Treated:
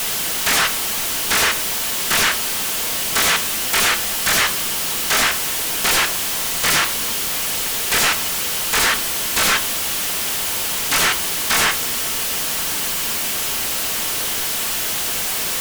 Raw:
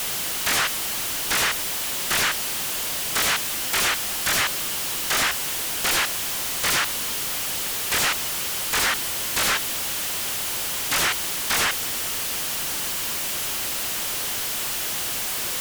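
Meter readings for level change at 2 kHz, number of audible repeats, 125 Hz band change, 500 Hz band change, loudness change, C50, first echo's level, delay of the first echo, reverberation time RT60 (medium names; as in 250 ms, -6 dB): +5.0 dB, no echo, +4.5 dB, +5.5 dB, +5.0 dB, 15.5 dB, no echo, no echo, 0.45 s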